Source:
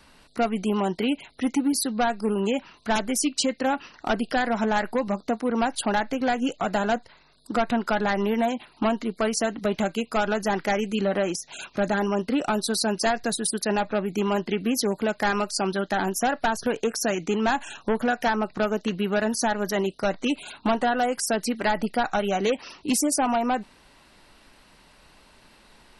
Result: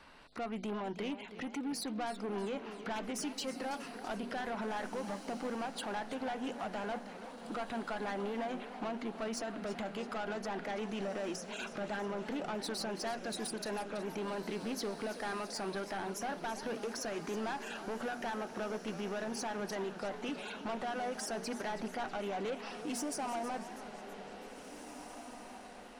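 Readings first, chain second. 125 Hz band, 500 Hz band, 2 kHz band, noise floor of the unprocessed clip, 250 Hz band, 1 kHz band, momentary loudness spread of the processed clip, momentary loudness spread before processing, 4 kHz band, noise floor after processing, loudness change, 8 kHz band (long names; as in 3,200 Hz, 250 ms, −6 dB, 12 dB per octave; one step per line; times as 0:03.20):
−14.0 dB, −13.0 dB, −13.5 dB, −56 dBFS, −14.5 dB, −13.5 dB, 5 LU, 4 LU, −12.5 dB, −50 dBFS, −14.0 dB, −15.0 dB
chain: low-pass filter 1,600 Hz 6 dB per octave
low-shelf EQ 440 Hz −9.5 dB
mains-hum notches 60/120/180/240 Hz
in parallel at −1 dB: downward compressor, threshold −38 dBFS, peak gain reduction 14 dB
on the sum: brickwall limiter −24 dBFS, peak gain reduction 9 dB
soft clipping −30.5 dBFS, distortion −13 dB
on a send: feedback delay with all-pass diffusion 1,974 ms, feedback 41%, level −11 dB
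on the sum: feedback echo with a swinging delay time 326 ms, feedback 57%, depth 169 cents, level −13 dB
level −3 dB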